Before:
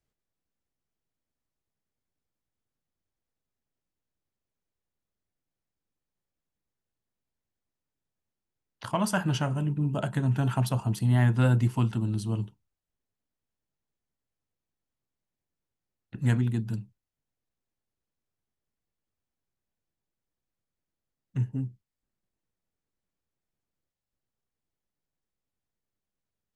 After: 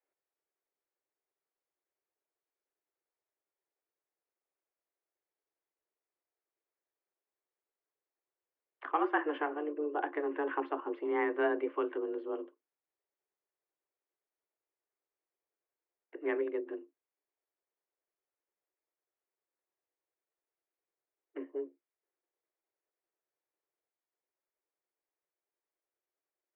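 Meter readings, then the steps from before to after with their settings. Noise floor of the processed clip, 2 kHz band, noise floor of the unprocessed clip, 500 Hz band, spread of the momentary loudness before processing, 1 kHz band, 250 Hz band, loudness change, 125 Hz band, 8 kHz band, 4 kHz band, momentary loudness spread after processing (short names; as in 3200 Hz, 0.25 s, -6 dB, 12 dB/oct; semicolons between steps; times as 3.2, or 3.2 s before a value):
under -85 dBFS, -1.0 dB, under -85 dBFS, +3.5 dB, 13 LU, 0.0 dB, -9.0 dB, -7.5 dB, under -40 dB, under -30 dB, under -10 dB, 15 LU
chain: mistuned SSB +150 Hz 200–2300 Hz; gain -2 dB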